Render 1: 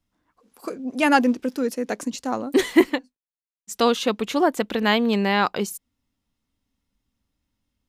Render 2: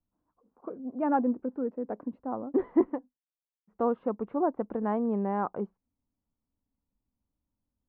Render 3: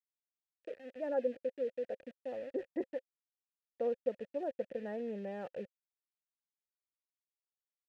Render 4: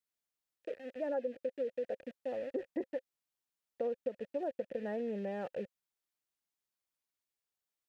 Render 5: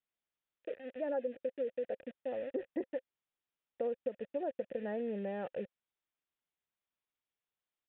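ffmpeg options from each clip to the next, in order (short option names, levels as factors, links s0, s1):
-af "lowpass=f=1100:w=0.5412,lowpass=f=1100:w=1.3066,volume=0.422"
-filter_complex "[0:a]aeval=exprs='val(0)*gte(abs(val(0)),0.01)':c=same,asplit=3[s0][s1][s2];[s0]bandpass=f=530:t=q:w=8,volume=1[s3];[s1]bandpass=f=1840:t=q:w=8,volume=0.501[s4];[s2]bandpass=f=2480:t=q:w=8,volume=0.355[s5];[s3][s4][s5]amix=inputs=3:normalize=0,asubboost=boost=6.5:cutoff=150,volume=1.68"
-af "acompressor=threshold=0.0158:ratio=5,volume=1.5"
-af "aresample=8000,aresample=44100"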